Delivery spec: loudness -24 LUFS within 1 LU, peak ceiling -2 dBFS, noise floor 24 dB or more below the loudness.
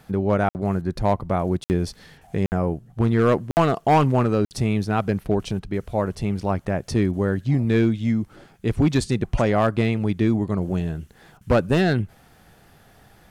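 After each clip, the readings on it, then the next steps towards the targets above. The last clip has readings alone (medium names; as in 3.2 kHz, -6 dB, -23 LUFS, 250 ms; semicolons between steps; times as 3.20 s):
clipped samples 0.9%; clipping level -11.5 dBFS; dropouts 5; longest dropout 59 ms; loudness -22.5 LUFS; peak level -11.5 dBFS; loudness target -24.0 LUFS
-> clip repair -11.5 dBFS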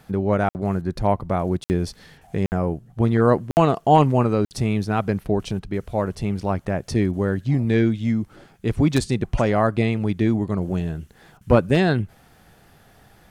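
clipped samples 0.0%; dropouts 5; longest dropout 59 ms
-> interpolate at 0.49/1.64/2.46/3.51/4.45 s, 59 ms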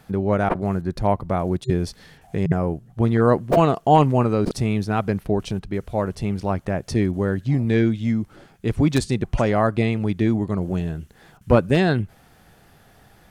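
dropouts 0; loudness -22.0 LUFS; peak level -2.5 dBFS; loudness target -24.0 LUFS
-> trim -2 dB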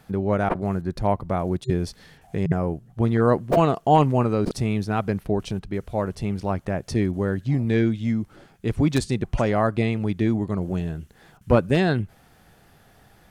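loudness -24.0 LUFS; peak level -4.5 dBFS; noise floor -56 dBFS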